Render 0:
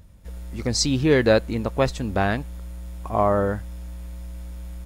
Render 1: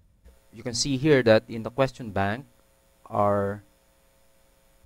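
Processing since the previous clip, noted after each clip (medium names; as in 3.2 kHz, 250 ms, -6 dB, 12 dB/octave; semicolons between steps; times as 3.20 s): hum notches 60/120/180/240/300 Hz; upward expansion 1.5:1, over -35 dBFS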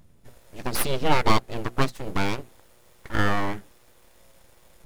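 in parallel at +2 dB: compression, threshold -30 dBFS, peak gain reduction 16 dB; on the sum: full-wave rectifier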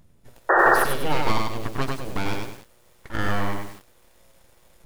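painted sound noise, 0.49–0.75 s, 320–1900 Hz -12 dBFS; in parallel at 0 dB: compression, threshold -23 dBFS, peak gain reduction 13.5 dB; on the sum: bit-crushed delay 99 ms, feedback 35%, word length 6-bit, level -3 dB; trim -7 dB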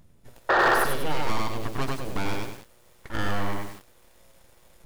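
saturation -15 dBFS, distortion -14 dB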